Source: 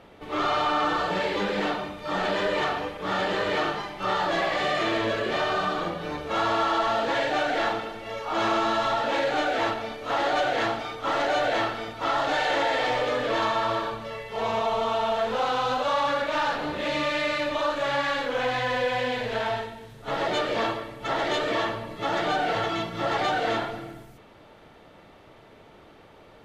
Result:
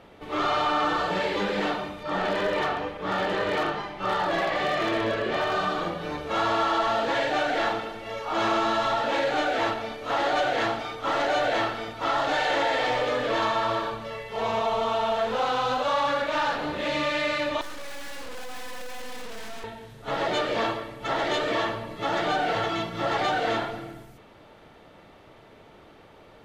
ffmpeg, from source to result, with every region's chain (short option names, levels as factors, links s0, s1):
-filter_complex "[0:a]asettb=1/sr,asplit=3[s0][s1][s2];[s0]atrim=end=2.034[s3];[s1]atrim=start=2.03:end=5.53,asetpts=PTS-STARTPTS,afade=t=in:d=0.004:c=qsin,afade=t=out:st=3.496:d=0.004:c=qsin,aemphasis=mode=reproduction:type=cd,aeval=exprs='0.119*(abs(mod(val(0)/0.119+3,4)-2)-1)':c=same[s4];[s2]atrim=start=5.526[s5];[s3][s4]acrossfade=d=0.004:c1=hsin:c2=qsin[s6];[s6][s5]acrossfade=d=0.004:c1=qsin:c2=hsin,asettb=1/sr,asplit=3[s7][s8][s9];[s7]atrim=end=17.614[s10];[s8]atrim=start=17.61:end=19.64,asetpts=PTS-STARTPTS,afade=t=in:d=0.004:c=qsin,afade=t=out:st=2.026:d=0.004:c=qsin,aecho=1:1:4:0.83,atrim=end_sample=89523,aeval=exprs='(tanh(50.1*val(0)+0.6)-tanh(0.6))/50.1':c=same,aeval=exprs='abs(val(0))':c=same[s11];[s9]atrim=start=19.636[s12];[s10][s11]acrossfade=d=0.004:c1=hsin:c2=qsin[s13];[s13][s12]acrossfade=d=0.004:c1=qsin:c2=hsin"